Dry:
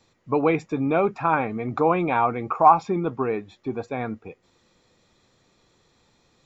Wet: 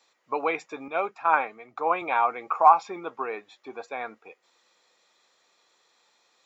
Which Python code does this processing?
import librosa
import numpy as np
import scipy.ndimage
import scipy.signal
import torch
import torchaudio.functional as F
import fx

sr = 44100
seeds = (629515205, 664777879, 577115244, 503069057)

y = scipy.signal.sosfilt(scipy.signal.butter(2, 690.0, 'highpass', fs=sr, output='sos'), x)
y = fx.band_widen(y, sr, depth_pct=100, at=(0.88, 2.02))